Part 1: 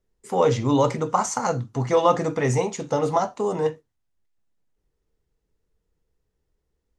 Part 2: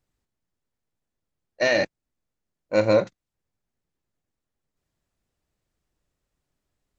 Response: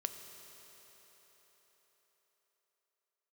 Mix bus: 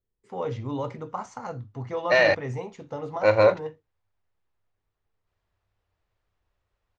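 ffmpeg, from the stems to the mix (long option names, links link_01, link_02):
-filter_complex "[0:a]volume=-11.5dB[link_01];[1:a]equalizer=frequency=125:width_type=o:width=1:gain=-10,equalizer=frequency=250:width_type=o:width=1:gain=-11,equalizer=frequency=1000:width_type=o:width=1:gain=4,adelay=500,volume=2.5dB[link_02];[link_01][link_02]amix=inputs=2:normalize=0,lowpass=3600,equalizer=frequency=98:width_type=o:width=0.27:gain=15"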